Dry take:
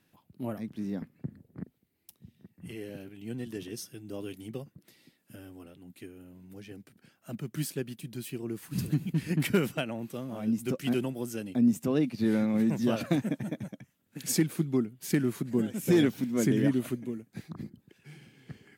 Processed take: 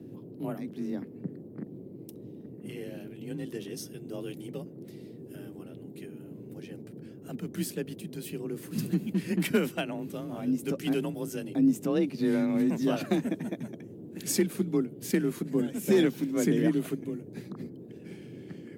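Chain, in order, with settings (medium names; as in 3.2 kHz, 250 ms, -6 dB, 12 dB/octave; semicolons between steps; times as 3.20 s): frequency shift +30 Hz; band noise 110–410 Hz -45 dBFS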